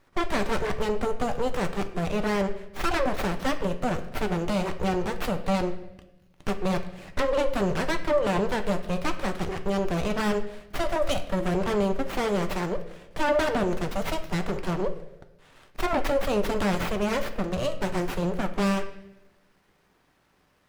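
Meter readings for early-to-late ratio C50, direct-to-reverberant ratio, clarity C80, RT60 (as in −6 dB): 12.0 dB, 6.5 dB, 14.0 dB, 0.95 s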